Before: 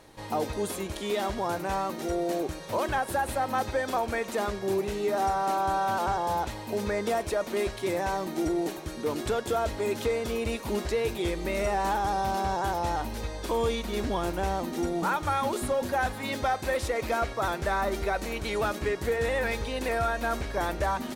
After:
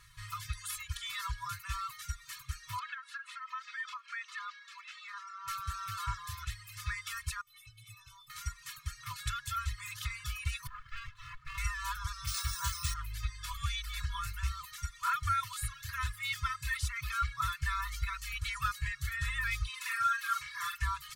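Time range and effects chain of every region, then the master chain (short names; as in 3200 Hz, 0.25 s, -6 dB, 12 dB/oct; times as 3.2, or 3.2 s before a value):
2.79–5.48 HPF 810 Hz 24 dB/oct + air absorption 140 m + compressor 12:1, threshold -32 dBFS
7.41–8.3 bell 1900 Hz -13 dB 0.27 oct + metallic resonator 110 Hz, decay 0.47 s, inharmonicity 0.03
10.67–11.58 BPF 330–2100 Hz + notches 50/100/150/200/250/300/350/400/450/500 Hz + running maximum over 33 samples
12.27–12.94 bell 6300 Hz +12 dB 1.5 oct + careless resampling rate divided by 3×, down none, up hold
19.69–20.82 HPF 350 Hz + doubler 45 ms -2.5 dB
whole clip: FFT band-reject 150–970 Hz; comb 2.3 ms, depth 87%; reverb removal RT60 0.94 s; gain -3.5 dB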